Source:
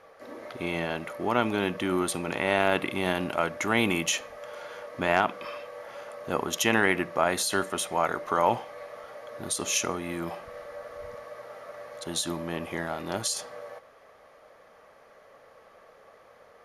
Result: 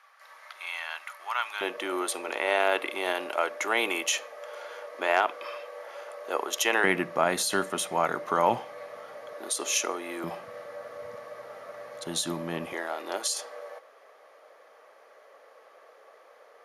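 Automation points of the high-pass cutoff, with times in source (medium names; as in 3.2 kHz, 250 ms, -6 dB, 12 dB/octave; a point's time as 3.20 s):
high-pass 24 dB/octave
990 Hz
from 1.61 s 380 Hz
from 6.84 s 120 Hz
from 9.33 s 320 Hz
from 10.24 s 110 Hz
from 12.73 s 350 Hz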